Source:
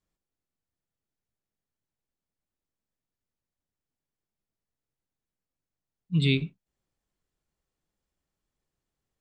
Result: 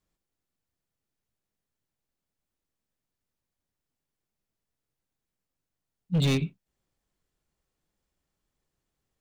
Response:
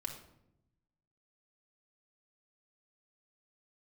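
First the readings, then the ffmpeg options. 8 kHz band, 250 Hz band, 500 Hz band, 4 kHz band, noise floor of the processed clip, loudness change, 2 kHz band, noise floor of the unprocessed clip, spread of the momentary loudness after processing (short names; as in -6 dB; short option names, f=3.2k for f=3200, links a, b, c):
n/a, 0.0 dB, +1.0 dB, -2.0 dB, under -85 dBFS, -1.0 dB, -4.5 dB, under -85 dBFS, 8 LU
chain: -af "asoftclip=type=hard:threshold=-23.5dB,volume=3dB"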